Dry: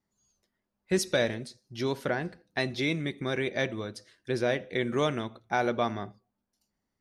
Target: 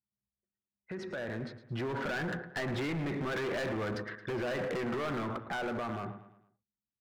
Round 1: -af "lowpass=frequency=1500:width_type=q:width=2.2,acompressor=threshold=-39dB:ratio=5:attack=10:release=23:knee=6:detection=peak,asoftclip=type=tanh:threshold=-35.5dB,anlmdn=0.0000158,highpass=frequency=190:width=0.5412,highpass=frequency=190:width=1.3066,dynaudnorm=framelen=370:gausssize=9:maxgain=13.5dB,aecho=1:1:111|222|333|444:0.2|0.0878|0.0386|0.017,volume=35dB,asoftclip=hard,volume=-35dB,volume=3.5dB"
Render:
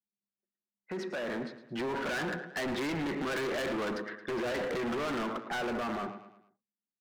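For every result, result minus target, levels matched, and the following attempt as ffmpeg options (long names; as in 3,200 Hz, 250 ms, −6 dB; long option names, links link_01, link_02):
downward compressor: peak gain reduction −7.5 dB; 125 Hz band −7.5 dB
-af "lowpass=frequency=1500:width_type=q:width=2.2,acompressor=threshold=-48.5dB:ratio=5:attack=10:release=23:knee=6:detection=peak,asoftclip=type=tanh:threshold=-35.5dB,anlmdn=0.0000158,highpass=frequency=190:width=0.5412,highpass=frequency=190:width=1.3066,dynaudnorm=framelen=370:gausssize=9:maxgain=13.5dB,aecho=1:1:111|222|333|444:0.2|0.0878|0.0386|0.017,volume=35dB,asoftclip=hard,volume=-35dB,volume=3.5dB"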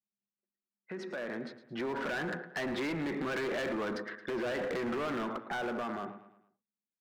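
125 Hz band −8.0 dB
-af "lowpass=frequency=1500:width_type=q:width=2.2,acompressor=threshold=-48.5dB:ratio=5:attack=10:release=23:knee=6:detection=peak,asoftclip=type=tanh:threshold=-35.5dB,anlmdn=0.0000158,highpass=frequency=73:width=0.5412,highpass=frequency=73:width=1.3066,dynaudnorm=framelen=370:gausssize=9:maxgain=13.5dB,aecho=1:1:111|222|333|444:0.2|0.0878|0.0386|0.017,volume=35dB,asoftclip=hard,volume=-35dB,volume=3.5dB"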